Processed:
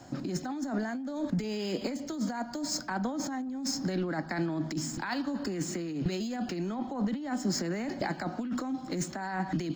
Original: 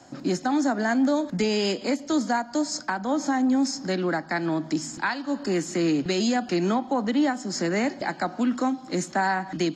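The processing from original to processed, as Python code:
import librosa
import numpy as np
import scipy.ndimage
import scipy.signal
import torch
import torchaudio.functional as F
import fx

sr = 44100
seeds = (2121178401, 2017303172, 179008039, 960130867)

y = scipy.ndimage.median_filter(x, 3, mode='constant')
y = fx.over_compress(y, sr, threshold_db=-29.0, ratio=-1.0)
y = fx.low_shelf(y, sr, hz=160.0, db=11.5)
y = F.gain(torch.from_numpy(y), -6.0).numpy()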